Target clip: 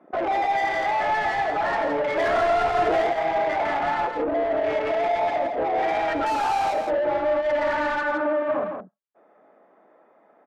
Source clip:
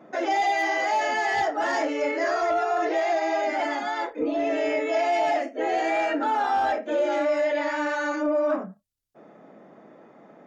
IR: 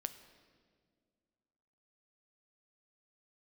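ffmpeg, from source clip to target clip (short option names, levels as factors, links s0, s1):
-filter_complex "[0:a]aemphasis=mode=reproduction:type=75fm,afwtdn=0.0251,lowshelf=f=240:g=-12,alimiter=limit=0.0708:level=0:latency=1:release=49,asettb=1/sr,asplit=3[s0][s1][s2];[s0]atrim=end=2.174[s3];[s1]atrim=start=2.17:end=3.07,asetpts=PTS-STARTPTS,afade=t=in:d=0.004:c=qsin,afade=t=out:st=0.896:d=0.004:c=qsin,acontrast=64[s4];[s2]atrim=start=3.066[s5];[s3][s4]acrossfade=d=0.004:c1=hsin:c2=qsin[s6];[s6][s5]acrossfade=d=0.004:c1=qsin:c2=hsin,asplit=2[s7][s8];[s8]highpass=f=720:p=1,volume=11.2,asoftclip=type=tanh:threshold=0.15[s9];[s7][s9]amix=inputs=2:normalize=0,lowpass=f=1600:p=1,volume=0.501,asettb=1/sr,asplit=3[s10][s11][s12];[s10]atrim=end=6.264[s13];[s11]atrim=start=6.26:end=6.74,asetpts=PTS-STARTPTS,afade=t=in:d=0.004:c=qsin,afade=t=out:st=0.476:d=0.004:c=qsin,adynamicsmooth=sensitivity=4.5:basefreq=630[s14];[s12]atrim=start=6.736[s15];[s13][s14]acrossfade=d=0.004:c1=hsin:c2=qsin[s16];[s16][s15]acrossfade=d=0.004:c1=qsin:c2=hsin,asettb=1/sr,asplit=3[s17][s18][s19];[s17]atrim=end=8.014[s20];[s18]atrim=start=8.01:end=8.63,asetpts=PTS-STARTPTS,afade=t=in:d=0.004:c=qsin,afade=t=out:st=0.616:d=0.004:c=qsin,highpass=130,lowpass=2200[s21];[s19]atrim=start=8.626[s22];[s20][s21]acrossfade=d=0.004:c1=hsin:c2=qsin[s23];[s23][s22]acrossfade=d=0.004:c1=qsin:c2=hsin,aecho=1:1:166:0.501"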